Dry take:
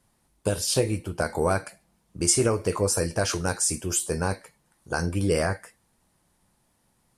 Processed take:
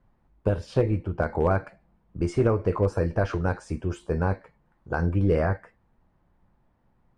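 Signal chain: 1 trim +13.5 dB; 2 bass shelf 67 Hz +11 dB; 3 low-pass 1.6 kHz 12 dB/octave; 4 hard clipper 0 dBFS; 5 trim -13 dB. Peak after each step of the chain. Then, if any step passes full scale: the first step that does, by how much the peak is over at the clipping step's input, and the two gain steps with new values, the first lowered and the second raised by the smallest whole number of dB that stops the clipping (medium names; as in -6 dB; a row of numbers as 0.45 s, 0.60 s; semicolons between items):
+5.0 dBFS, +5.0 dBFS, +3.0 dBFS, 0.0 dBFS, -13.0 dBFS; step 1, 3.0 dB; step 1 +10.5 dB, step 5 -10 dB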